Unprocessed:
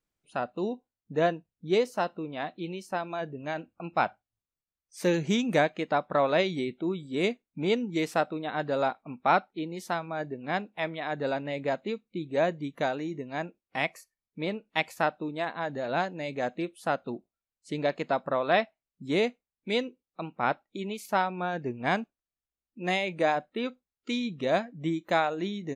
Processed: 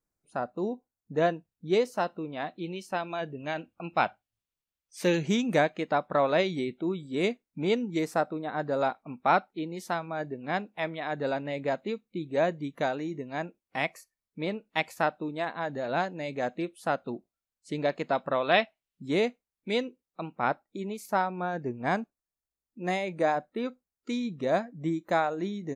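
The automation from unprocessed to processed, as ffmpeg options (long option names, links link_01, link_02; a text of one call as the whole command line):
ffmpeg -i in.wav -af "asetnsamples=nb_out_samples=441:pad=0,asendcmd='1.17 equalizer g -2;2.76 equalizer g 4.5;5.27 equalizer g -2;7.99 equalizer g -11;8.81 equalizer g -2;18.15 equalizer g 6.5;19.05 equalizer g -2.5;20.48 equalizer g -9.5',equalizer=frequency=3000:width_type=o:width=0.87:gain=-13.5" out.wav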